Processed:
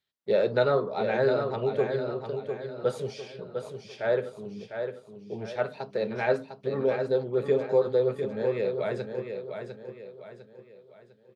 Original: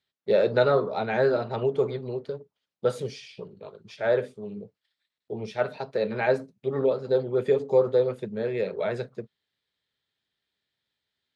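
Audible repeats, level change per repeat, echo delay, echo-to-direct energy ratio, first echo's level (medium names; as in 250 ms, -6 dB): 4, -8.0 dB, 702 ms, -6.5 dB, -7.0 dB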